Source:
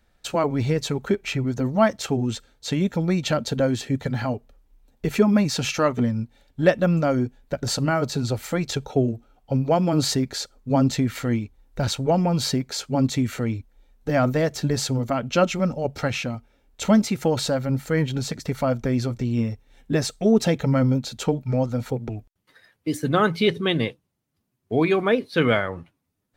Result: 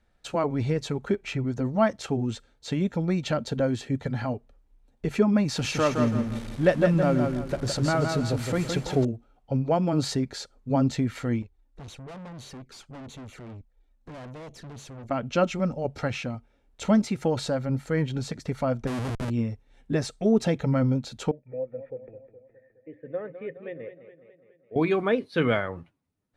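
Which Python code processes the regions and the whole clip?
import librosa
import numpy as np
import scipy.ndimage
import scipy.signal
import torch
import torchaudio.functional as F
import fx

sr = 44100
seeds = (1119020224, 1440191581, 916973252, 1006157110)

y = fx.chain(x, sr, fx.zero_step(step_db=-31.0),
    fx.echo_feedback(ms=165, feedback_pct=34, wet_db=-5.0), at=(5.48, 9.05))
y = fx.chain(y, sr, fx.env_flanger(rest_ms=4.2, full_db=-20.5),
    fx.tube_stage(drive_db=36.0, bias=0.65), at=(11.42, 15.11))
y = fx.chain(y, sr, fx.lowpass(hz=1400.0, slope=12),
    fx.low_shelf(hz=75.0, db=-10.0),
    fx.schmitt(flips_db=-35.0), at=(18.87, 19.3))
y = fx.chain(y, sr, fx.formant_cascade(vowel='e'),
    fx.echo_warbled(ms=208, feedback_pct=58, rate_hz=2.8, cents=81, wet_db=-12), at=(21.31, 24.76))
y = scipy.signal.sosfilt(scipy.signal.butter(4, 11000.0, 'lowpass', fs=sr, output='sos'), y)
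y = fx.peak_eq(y, sr, hz=7700.0, db=-5.0, octaves=2.7)
y = y * librosa.db_to_amplitude(-3.5)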